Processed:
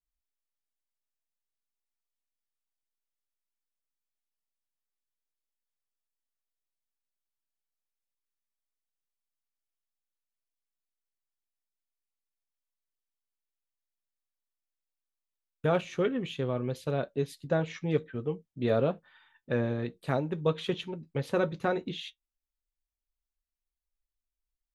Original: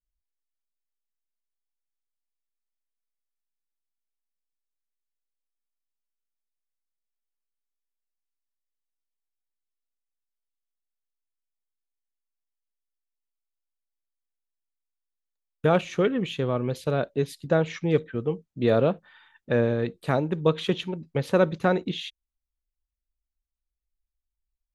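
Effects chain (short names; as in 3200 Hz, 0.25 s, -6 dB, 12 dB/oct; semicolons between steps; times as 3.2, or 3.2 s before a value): flange 0.11 Hz, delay 7.2 ms, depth 1.1 ms, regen -58%; gain -1.5 dB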